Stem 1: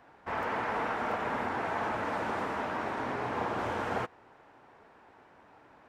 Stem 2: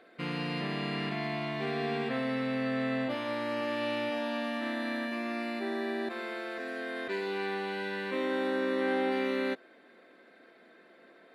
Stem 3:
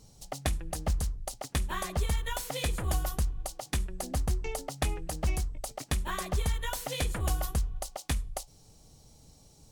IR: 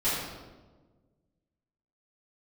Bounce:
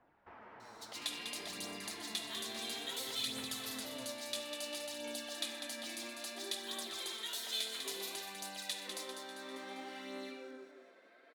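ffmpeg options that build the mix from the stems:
-filter_complex "[0:a]acompressor=threshold=0.00631:ratio=2,lowpass=3900,volume=0.316,asplit=2[s0][s1];[s1]volume=0.119[s2];[1:a]highpass=480,adelay=750,volume=0.398,asplit=2[s3][s4];[s4]volume=0.596[s5];[2:a]highpass=890,equalizer=f=3800:t=o:w=0.7:g=13.5,adelay=600,volume=0.596,asplit=3[s6][s7][s8];[s7]volume=0.168[s9];[s8]volume=0.501[s10];[3:a]atrim=start_sample=2205[s11];[s2][s5][s9]amix=inputs=3:normalize=0[s12];[s12][s11]afir=irnorm=-1:irlink=0[s13];[s10]aecho=0:1:198|396|594|792|990|1188|1386|1584:1|0.56|0.314|0.176|0.0983|0.0551|0.0308|0.0173[s14];[s0][s3][s6][s13][s14]amix=inputs=5:normalize=0,acrossover=split=340|3000[s15][s16][s17];[s16]acompressor=threshold=0.00398:ratio=3[s18];[s15][s18][s17]amix=inputs=3:normalize=0,flanger=delay=0.1:depth=9:regen=43:speed=0.59:shape=sinusoidal"

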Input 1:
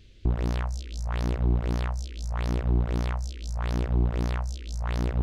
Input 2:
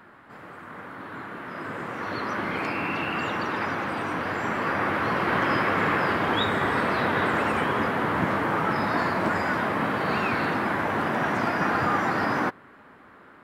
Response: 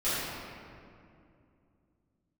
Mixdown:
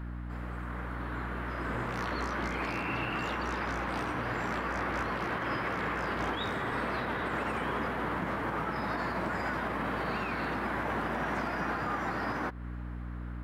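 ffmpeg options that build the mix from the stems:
-filter_complex "[0:a]lowshelf=f=700:t=q:w=1.5:g=-10.5,adelay=1500,volume=0.75[s0];[1:a]aeval=exprs='val(0)+0.0158*(sin(2*PI*60*n/s)+sin(2*PI*2*60*n/s)/2+sin(2*PI*3*60*n/s)/3+sin(2*PI*4*60*n/s)/4+sin(2*PI*5*60*n/s)/5)':c=same,volume=0.841[s1];[s0][s1]amix=inputs=2:normalize=0,alimiter=limit=0.0631:level=0:latency=1:release=184"

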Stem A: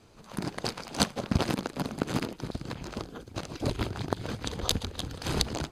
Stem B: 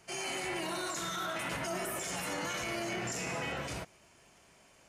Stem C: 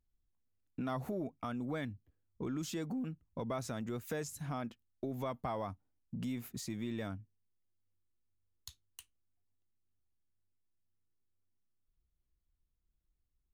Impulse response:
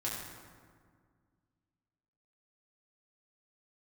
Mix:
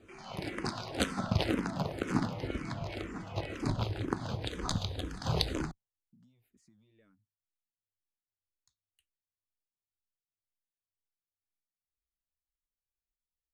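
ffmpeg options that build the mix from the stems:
-filter_complex "[0:a]acrossover=split=1400[s0][s1];[s0]aeval=exprs='val(0)*(1-0.5/2+0.5/2*cos(2*PI*3.2*n/s))':c=same[s2];[s1]aeval=exprs='val(0)*(1-0.5/2-0.5/2*cos(2*PI*3.2*n/s))':c=same[s3];[s2][s3]amix=inputs=2:normalize=0,volume=1.12,asplit=2[s4][s5];[s5]volume=0.335[s6];[1:a]bandreject=f=1700:w=16,afwtdn=0.00708,volume=0.531[s7];[2:a]acompressor=threshold=0.00447:ratio=3,volume=0.178[s8];[3:a]atrim=start_sample=2205[s9];[s6][s9]afir=irnorm=-1:irlink=0[s10];[s4][s7][s8][s10]amix=inputs=4:normalize=0,highshelf=f=7900:g=-10,asplit=2[s11][s12];[s12]afreqshift=-2[s13];[s11][s13]amix=inputs=2:normalize=1"

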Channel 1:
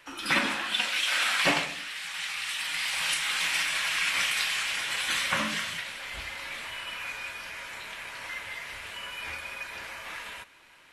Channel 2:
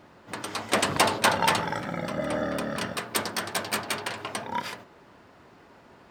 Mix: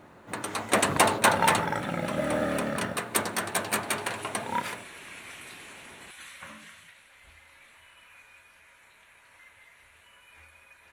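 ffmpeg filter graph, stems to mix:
-filter_complex "[0:a]equalizer=f=82:t=o:w=0.29:g=10,adelay=1100,volume=0.15[s0];[1:a]volume=1.12[s1];[s0][s1]amix=inputs=2:normalize=0,equalizer=f=3150:t=o:w=0.33:g=-4,equalizer=f=5000:t=o:w=0.33:g=-10,equalizer=f=10000:t=o:w=0.33:g=6,acrusher=bits=8:mode=log:mix=0:aa=0.000001"

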